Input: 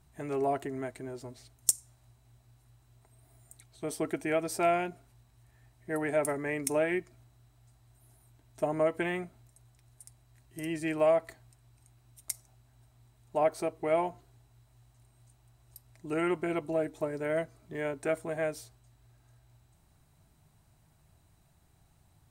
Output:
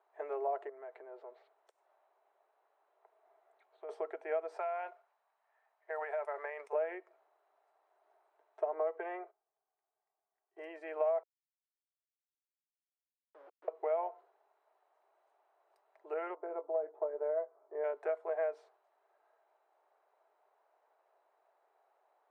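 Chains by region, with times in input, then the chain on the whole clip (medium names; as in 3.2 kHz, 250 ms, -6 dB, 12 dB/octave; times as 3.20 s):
0.69–3.89 s: high-order bell 7.1 kHz -10 dB 1.3 oct + compression 12:1, threshold -42 dBFS
4.56–6.73 s: high-pass 770 Hz + compression 12:1, threshold -38 dBFS + waveshaping leveller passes 1
8.74–10.61 s: low-pass 2.3 kHz 6 dB/octave + gate -54 dBFS, range -17 dB + comb 2.6 ms, depth 43%
11.23–13.68 s: inverse Chebyshev low-pass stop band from 1 kHz, stop band 70 dB + small samples zeroed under -50.5 dBFS + vibrato with a chosen wave saw down 5.8 Hz, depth 250 cents
16.35–17.84 s: low-pass 1 kHz + doubling 20 ms -10 dB
whole clip: low-pass 1.1 kHz 12 dB/octave; compression 5:1, threshold -34 dBFS; steep high-pass 440 Hz 48 dB/octave; trim +4 dB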